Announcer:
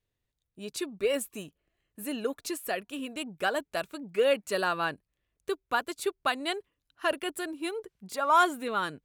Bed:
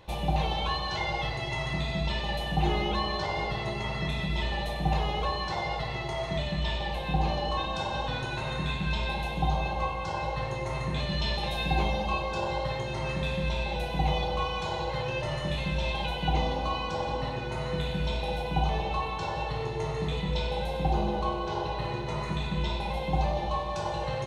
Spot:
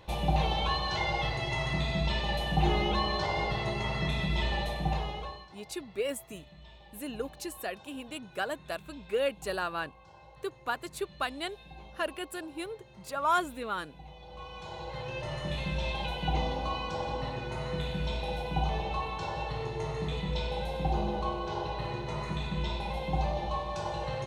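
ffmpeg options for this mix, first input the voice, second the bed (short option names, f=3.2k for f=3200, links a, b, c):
-filter_complex "[0:a]adelay=4950,volume=-4.5dB[a];[1:a]volume=19.5dB,afade=t=out:st=4.56:d=0.93:silence=0.0749894,afade=t=in:st=14.18:d=1.42:silence=0.105925[b];[a][b]amix=inputs=2:normalize=0"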